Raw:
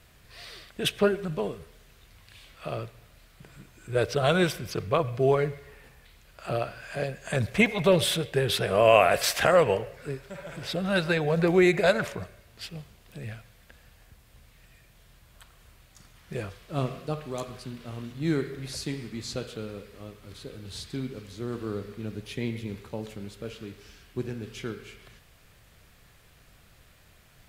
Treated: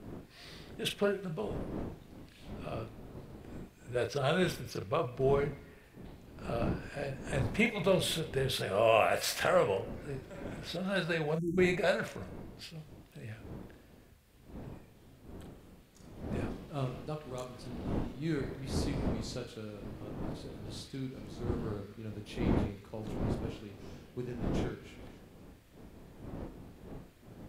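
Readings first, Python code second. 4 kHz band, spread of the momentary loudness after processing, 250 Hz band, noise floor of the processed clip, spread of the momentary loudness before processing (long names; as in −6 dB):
−7.0 dB, 21 LU, −5.5 dB, −58 dBFS, 21 LU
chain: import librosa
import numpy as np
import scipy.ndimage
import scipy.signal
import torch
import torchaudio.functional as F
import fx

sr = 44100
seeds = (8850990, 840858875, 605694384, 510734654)

y = fx.dmg_wind(x, sr, seeds[0], corner_hz=310.0, level_db=-35.0)
y = fx.spec_erase(y, sr, start_s=11.35, length_s=0.23, low_hz=360.0, high_hz=5500.0)
y = fx.doubler(y, sr, ms=38.0, db=-7.0)
y = y * 10.0 ** (-8.0 / 20.0)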